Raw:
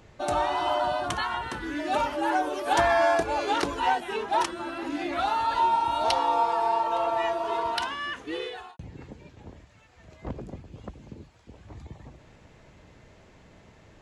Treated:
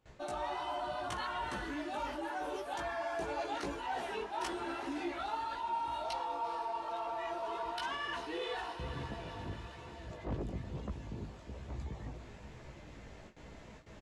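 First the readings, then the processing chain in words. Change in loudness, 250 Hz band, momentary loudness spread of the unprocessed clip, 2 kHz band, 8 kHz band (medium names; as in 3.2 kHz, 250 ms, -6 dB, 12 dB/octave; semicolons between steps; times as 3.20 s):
-13.0 dB, -8.5 dB, 20 LU, -10.5 dB, -11.0 dB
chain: resampled via 32 kHz; echo that smears into a reverb 466 ms, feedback 64%, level -15 dB; gate with hold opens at -44 dBFS; reverse; compression 6:1, threshold -36 dBFS, peak gain reduction 17 dB; reverse; chorus voices 4, 1.1 Hz, delay 17 ms, depth 3.2 ms; in parallel at -5 dB: saturation -39.5 dBFS, distortion -12 dB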